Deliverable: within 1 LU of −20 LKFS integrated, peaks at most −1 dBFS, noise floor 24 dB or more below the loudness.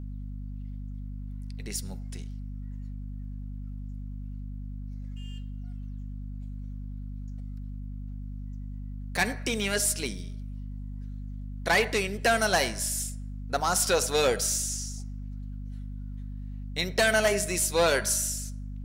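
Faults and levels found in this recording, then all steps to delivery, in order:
mains hum 50 Hz; hum harmonics up to 250 Hz; level of the hum −34 dBFS; integrated loudness −27.0 LKFS; sample peak −12.5 dBFS; target loudness −20.0 LKFS
→ mains-hum notches 50/100/150/200/250 Hz
level +7 dB

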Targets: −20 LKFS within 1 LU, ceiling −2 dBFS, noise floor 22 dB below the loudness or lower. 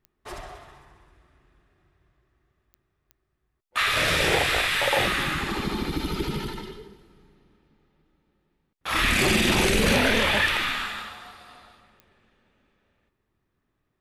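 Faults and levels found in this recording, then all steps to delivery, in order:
number of clicks 5; integrated loudness −22.5 LKFS; sample peak −10.0 dBFS; target loudness −20.0 LKFS
→ click removal
level +2.5 dB

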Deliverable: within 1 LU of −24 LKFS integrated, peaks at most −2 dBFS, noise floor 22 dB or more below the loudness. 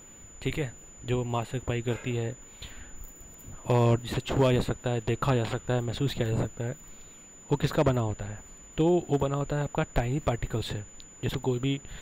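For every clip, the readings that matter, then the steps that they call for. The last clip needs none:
share of clipped samples 0.4%; peaks flattened at −16.5 dBFS; interfering tone 7,000 Hz; level of the tone −49 dBFS; integrated loudness −29.0 LKFS; sample peak −16.5 dBFS; target loudness −24.0 LKFS
→ clipped peaks rebuilt −16.5 dBFS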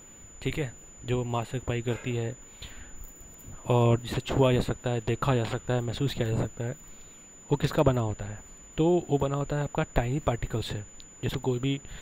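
share of clipped samples 0.0%; interfering tone 7,000 Hz; level of the tone −49 dBFS
→ notch filter 7,000 Hz, Q 30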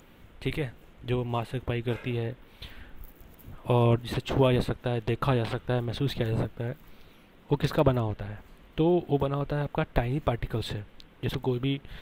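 interfering tone none found; integrated loudness −29.0 LKFS; sample peak −8.0 dBFS; target loudness −24.0 LKFS
→ level +5 dB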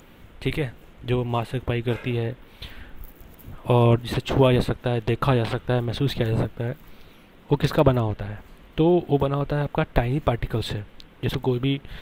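integrated loudness −24.0 LKFS; sample peak −3.0 dBFS; background noise floor −50 dBFS

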